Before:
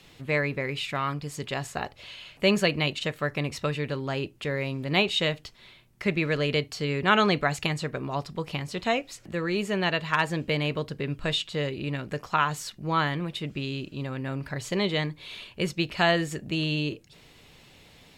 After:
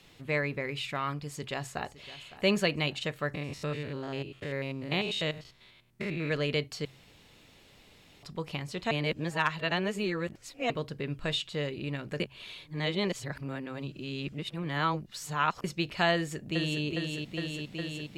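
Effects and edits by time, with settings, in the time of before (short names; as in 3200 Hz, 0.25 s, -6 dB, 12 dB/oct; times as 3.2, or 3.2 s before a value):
1.26–2.15 echo throw 0.56 s, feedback 40%, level -16 dB
3.34–6.31 stepped spectrum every 0.1 s
6.85–8.23 room tone
8.91–10.7 reverse
12.2–15.64 reverse
16.14–16.83 echo throw 0.41 s, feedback 85%, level -4 dB
whole clip: de-hum 66.28 Hz, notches 2; gain -4 dB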